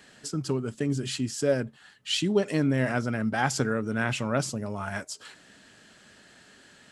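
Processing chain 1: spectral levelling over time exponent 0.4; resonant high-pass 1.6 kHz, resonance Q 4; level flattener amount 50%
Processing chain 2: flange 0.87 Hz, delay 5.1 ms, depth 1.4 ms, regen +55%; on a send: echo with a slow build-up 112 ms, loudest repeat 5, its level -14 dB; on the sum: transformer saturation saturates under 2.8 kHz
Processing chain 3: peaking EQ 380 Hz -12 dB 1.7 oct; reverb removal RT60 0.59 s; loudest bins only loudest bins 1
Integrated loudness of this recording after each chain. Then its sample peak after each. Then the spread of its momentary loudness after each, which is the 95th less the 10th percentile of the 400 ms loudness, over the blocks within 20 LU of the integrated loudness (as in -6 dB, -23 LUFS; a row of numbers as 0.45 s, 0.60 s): -18.0 LUFS, -37.5 LUFS, -43.0 LUFS; -3.5 dBFS, -15.5 dBFS, -30.0 dBFS; 3 LU, 10 LU, 10 LU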